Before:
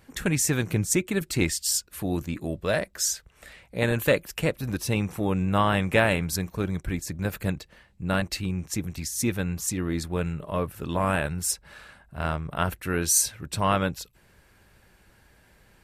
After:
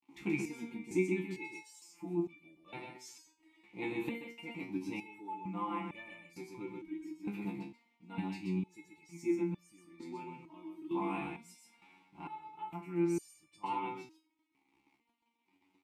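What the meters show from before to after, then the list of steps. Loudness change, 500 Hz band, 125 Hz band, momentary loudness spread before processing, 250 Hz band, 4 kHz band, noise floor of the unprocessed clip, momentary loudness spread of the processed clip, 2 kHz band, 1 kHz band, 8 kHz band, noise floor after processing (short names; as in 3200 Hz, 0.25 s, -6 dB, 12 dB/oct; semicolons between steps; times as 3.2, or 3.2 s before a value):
-13.0 dB, -13.0 dB, -18.0 dB, 9 LU, -9.0 dB, -22.5 dB, -60 dBFS, 17 LU, -16.0 dB, -11.5 dB, -29.5 dB, -79 dBFS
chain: high shelf 9300 Hz +8 dB; comb 5.7 ms, depth 81%; requantised 8-bit, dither none; vowel filter u; echo 0.129 s -4.5 dB; stepped resonator 2.2 Hz 68–590 Hz; gain +9 dB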